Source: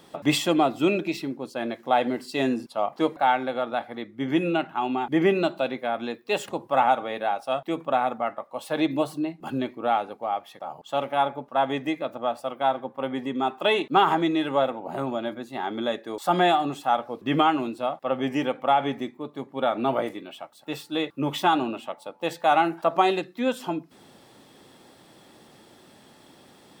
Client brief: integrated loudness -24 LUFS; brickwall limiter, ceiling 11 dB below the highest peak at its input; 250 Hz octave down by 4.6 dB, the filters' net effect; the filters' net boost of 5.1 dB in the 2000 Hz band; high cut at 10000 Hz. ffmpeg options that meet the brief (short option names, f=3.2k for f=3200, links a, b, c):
-af "lowpass=10k,equalizer=f=250:t=o:g=-6.5,equalizer=f=2k:t=o:g=7,volume=5.5dB,alimiter=limit=-11.5dB:level=0:latency=1"